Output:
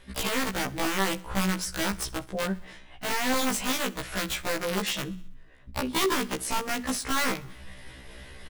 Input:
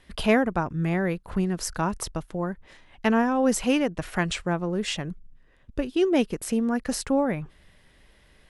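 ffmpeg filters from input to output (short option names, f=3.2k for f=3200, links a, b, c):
-filter_complex "[0:a]lowshelf=f=82:g=3,bandreject=f=60:t=h:w=6,bandreject=f=120:t=h:w=6,bandreject=f=180:t=h:w=6,bandreject=f=240:t=h:w=6,areverse,acompressor=mode=upward:threshold=-37dB:ratio=2.5,areverse,alimiter=limit=-18dB:level=0:latency=1:release=55,asplit=2[a][b];[b]acompressor=threshold=-34dB:ratio=16,volume=0dB[c];[a][c]amix=inputs=2:normalize=0,aeval=exprs='(mod(7.94*val(0)+1,2)-1)/7.94':c=same,aecho=1:1:64|128|192|256|320:0.0841|0.0496|0.0293|0.0173|0.0102,afftfilt=real='re*1.73*eq(mod(b,3),0)':imag='im*1.73*eq(mod(b,3),0)':win_size=2048:overlap=0.75"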